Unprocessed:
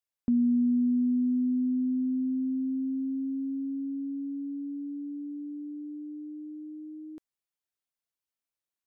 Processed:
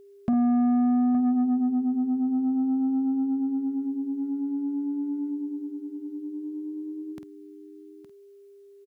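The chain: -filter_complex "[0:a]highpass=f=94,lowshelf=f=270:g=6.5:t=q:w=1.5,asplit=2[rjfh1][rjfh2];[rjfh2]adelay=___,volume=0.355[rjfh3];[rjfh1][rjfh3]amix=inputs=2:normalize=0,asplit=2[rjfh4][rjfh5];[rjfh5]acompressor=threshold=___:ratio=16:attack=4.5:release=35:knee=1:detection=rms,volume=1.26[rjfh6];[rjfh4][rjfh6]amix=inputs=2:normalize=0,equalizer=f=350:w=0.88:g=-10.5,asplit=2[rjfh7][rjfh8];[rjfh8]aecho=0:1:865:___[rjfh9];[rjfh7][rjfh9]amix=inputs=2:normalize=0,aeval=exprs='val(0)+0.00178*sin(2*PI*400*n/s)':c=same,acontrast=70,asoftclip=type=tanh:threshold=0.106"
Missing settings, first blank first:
49, 0.0251, 0.224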